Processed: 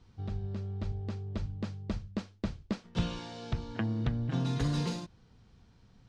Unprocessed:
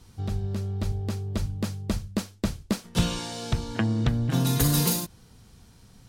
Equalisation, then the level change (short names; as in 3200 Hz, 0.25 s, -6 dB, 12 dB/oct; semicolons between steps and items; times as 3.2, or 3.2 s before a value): LPF 9500 Hz 12 dB/oct; air absorption 140 m; -7.0 dB